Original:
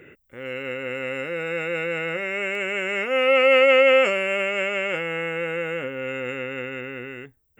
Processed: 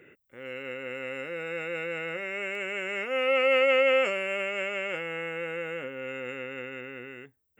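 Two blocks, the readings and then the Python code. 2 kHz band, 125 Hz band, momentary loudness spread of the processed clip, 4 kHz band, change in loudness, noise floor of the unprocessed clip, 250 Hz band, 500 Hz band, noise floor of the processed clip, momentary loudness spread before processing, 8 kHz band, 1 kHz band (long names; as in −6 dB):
−6.5 dB, −9.0 dB, 17 LU, −6.5 dB, −6.5 dB, −60 dBFS, −7.5 dB, −7.0 dB, −67 dBFS, 17 LU, can't be measured, −6.5 dB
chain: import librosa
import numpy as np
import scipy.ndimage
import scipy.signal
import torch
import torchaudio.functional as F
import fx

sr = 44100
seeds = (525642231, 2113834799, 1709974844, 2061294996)

y = fx.highpass(x, sr, hz=140.0, slope=6)
y = y * librosa.db_to_amplitude(-6.5)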